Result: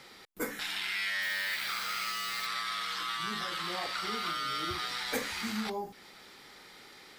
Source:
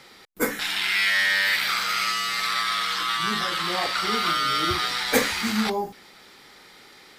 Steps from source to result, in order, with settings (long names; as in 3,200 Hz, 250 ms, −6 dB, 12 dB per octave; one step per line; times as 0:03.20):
downward compressor 2 to 1, threshold −34 dBFS, peak gain reduction 11 dB
0:01.21–0:02.45: background noise blue −45 dBFS
level −3.5 dB